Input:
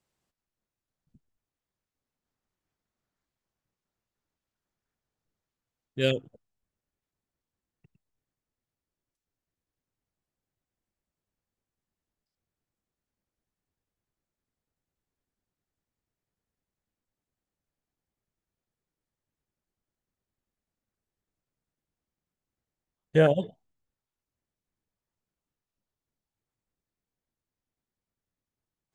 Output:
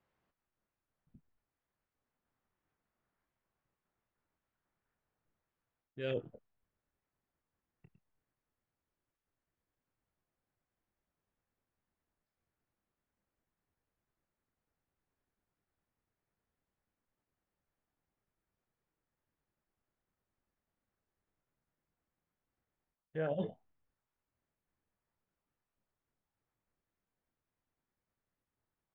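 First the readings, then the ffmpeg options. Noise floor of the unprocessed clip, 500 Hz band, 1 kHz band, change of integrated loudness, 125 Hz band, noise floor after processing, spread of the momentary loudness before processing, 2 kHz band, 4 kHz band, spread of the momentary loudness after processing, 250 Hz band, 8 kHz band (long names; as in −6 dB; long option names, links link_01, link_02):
below −85 dBFS, −13.0 dB, −12.5 dB, −13.5 dB, −14.5 dB, below −85 dBFS, 17 LU, −14.5 dB, −17.5 dB, 16 LU, −12.5 dB, can't be measured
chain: -filter_complex "[0:a]lowpass=1800,tiltshelf=frequency=760:gain=-3.5,areverse,acompressor=threshold=-36dB:ratio=12,areverse,asplit=2[link_01][link_02];[link_02]adelay=25,volume=-11dB[link_03];[link_01][link_03]amix=inputs=2:normalize=0,volume=2.5dB"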